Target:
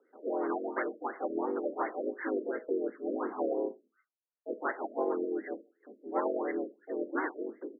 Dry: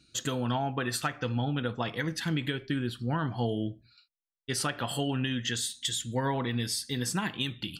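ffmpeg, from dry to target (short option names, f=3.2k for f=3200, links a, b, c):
-filter_complex "[0:a]asplit=3[a][b][c];[b]asetrate=37084,aresample=44100,atempo=1.18921,volume=-4dB[d];[c]asetrate=58866,aresample=44100,atempo=0.749154,volume=-3dB[e];[a][d][e]amix=inputs=3:normalize=0,highpass=f=210:t=q:w=0.5412,highpass=f=210:t=q:w=1.307,lowpass=f=3.4k:t=q:w=0.5176,lowpass=f=3.4k:t=q:w=0.7071,lowpass=f=3.4k:t=q:w=1.932,afreqshift=99,afftfilt=real='re*lt(b*sr/1024,640*pow(2200/640,0.5+0.5*sin(2*PI*2.8*pts/sr)))':imag='im*lt(b*sr/1024,640*pow(2200/640,0.5+0.5*sin(2*PI*2.8*pts/sr)))':win_size=1024:overlap=0.75,volume=-2dB"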